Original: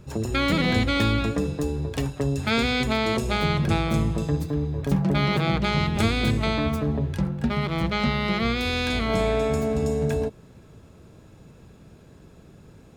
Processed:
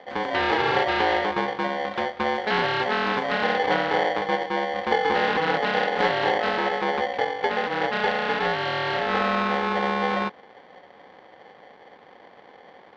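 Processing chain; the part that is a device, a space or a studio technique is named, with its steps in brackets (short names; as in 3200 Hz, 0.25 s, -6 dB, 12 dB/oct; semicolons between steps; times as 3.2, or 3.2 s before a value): ring modulator pedal into a guitar cabinet (polarity switched at an audio rate 640 Hz; speaker cabinet 100–3600 Hz, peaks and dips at 120 Hz -6 dB, 1600 Hz +3 dB, 2800 Hz -4 dB)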